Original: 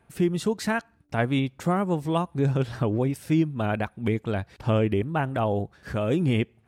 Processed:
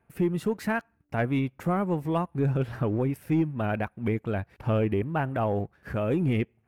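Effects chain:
leveller curve on the samples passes 1
flat-topped bell 5,400 Hz −9.5 dB
level −5 dB

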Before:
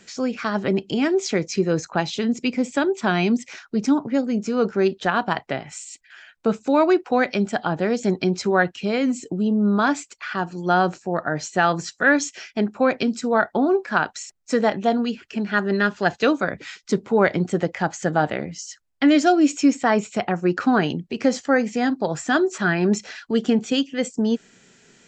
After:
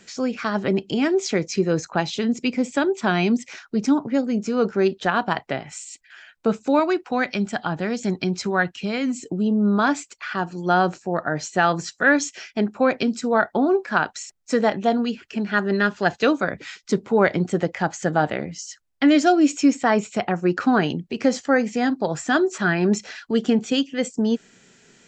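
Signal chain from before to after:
0:06.79–0:09.29: dynamic equaliser 480 Hz, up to −6 dB, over −31 dBFS, Q 0.94

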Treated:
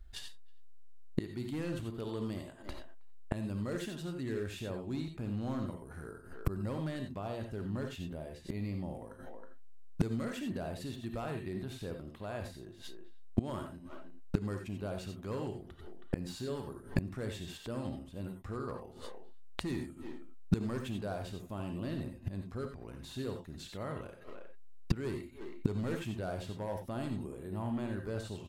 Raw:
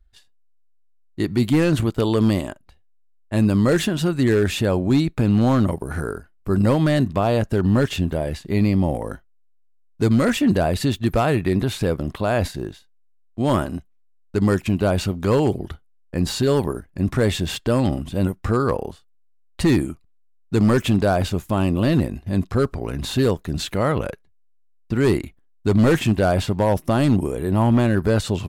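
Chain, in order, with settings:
0:26.80–0:27.92: notch filter 5,700 Hz, Q 6.8
far-end echo of a speakerphone 320 ms, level −29 dB
reverb whose tail is shaped and stops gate 110 ms rising, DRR 4.5 dB
gate with flip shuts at −22 dBFS, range −27 dB
level +6 dB

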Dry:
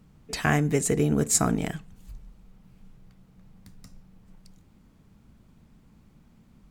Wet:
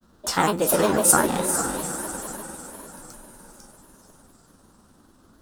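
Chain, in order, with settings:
peak hold with a decay on every bin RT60 0.33 s
speed change +24%
feedback delay with all-pass diffusion 456 ms, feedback 49%, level −5.5 dB
granular cloud, spray 23 ms, pitch spread up and down by 3 semitones
drawn EQ curve 150 Hz 0 dB, 1,400 Hz +14 dB, 2,200 Hz −2 dB, 3,900 Hz +11 dB
level −4 dB

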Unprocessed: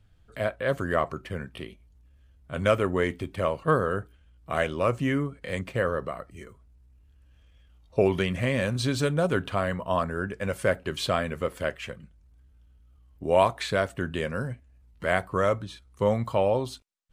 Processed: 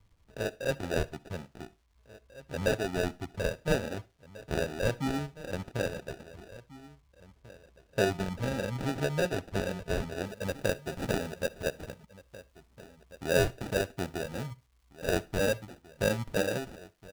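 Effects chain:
reverb reduction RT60 0.97 s
slap from a distant wall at 290 metres, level −18 dB
decimation without filtering 41×
surface crackle 390 per second −56 dBFS
high-shelf EQ 8,500 Hz −9.5 dB, from 0:10.26 −3 dB
convolution reverb RT60 0.30 s, pre-delay 49 ms, DRR 20.5 dB
level −4 dB

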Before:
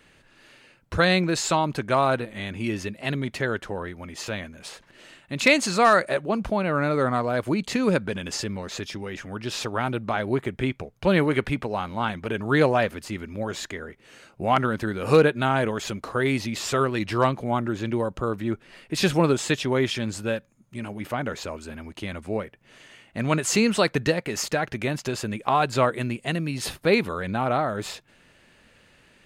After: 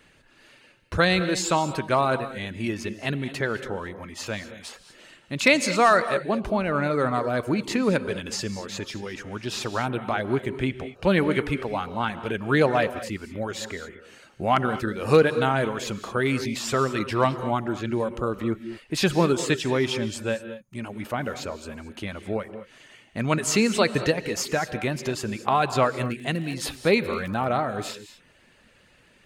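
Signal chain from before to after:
reverb reduction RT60 0.52 s
reverb whose tail is shaped and stops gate 250 ms rising, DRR 11.5 dB
0:25.95–0:27.46: surface crackle 20 per second −33 dBFS

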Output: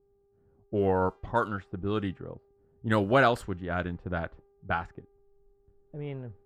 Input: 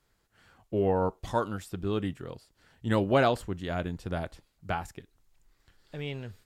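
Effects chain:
dynamic equaliser 1,400 Hz, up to +7 dB, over −48 dBFS, Q 2.2
hum with harmonics 400 Hz, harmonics 27, −63 dBFS −8 dB per octave
low-pass that shuts in the quiet parts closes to 320 Hz, open at −22.5 dBFS

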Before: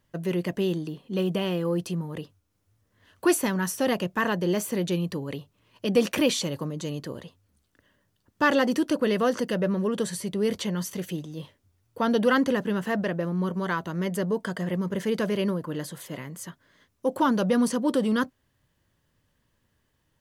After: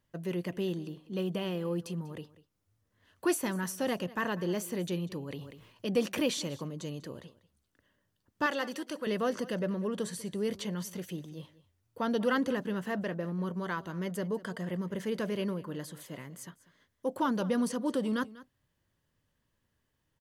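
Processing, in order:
0:08.46–0:09.07: low-shelf EQ 440 Hz −12 dB
single-tap delay 194 ms −19 dB
0:05.18–0:05.98: level that may fall only so fast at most 61 dB per second
level −7 dB

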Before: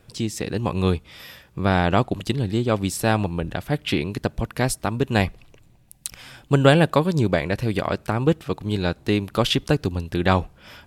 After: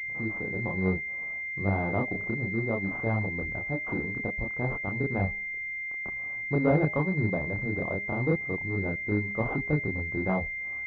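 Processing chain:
multi-voice chorus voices 2, 0.3 Hz, delay 29 ms, depth 3 ms
hum removal 203.7 Hz, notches 4
switching amplifier with a slow clock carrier 2,100 Hz
level −5 dB

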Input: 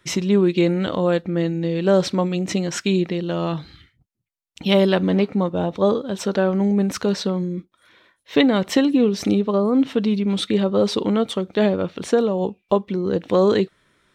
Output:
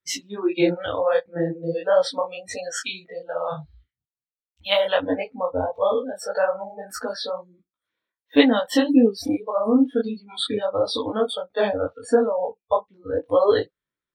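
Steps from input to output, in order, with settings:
noise reduction from a noise print of the clip's start 30 dB
micro pitch shift up and down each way 54 cents
level +4.5 dB

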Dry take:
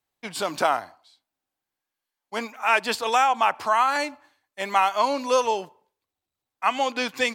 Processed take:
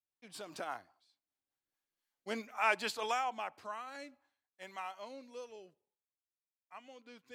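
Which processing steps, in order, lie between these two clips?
source passing by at 0:02.02, 12 m/s, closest 4.2 metres
rotating-speaker cabinet horn 5 Hz, later 0.6 Hz, at 0:01.54
level −2 dB

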